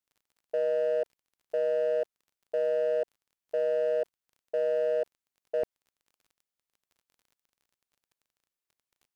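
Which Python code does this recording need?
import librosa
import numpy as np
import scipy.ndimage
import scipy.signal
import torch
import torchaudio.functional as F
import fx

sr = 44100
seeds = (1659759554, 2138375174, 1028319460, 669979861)

y = fx.fix_declip(x, sr, threshold_db=-22.5)
y = fx.fix_declick_ar(y, sr, threshold=6.5)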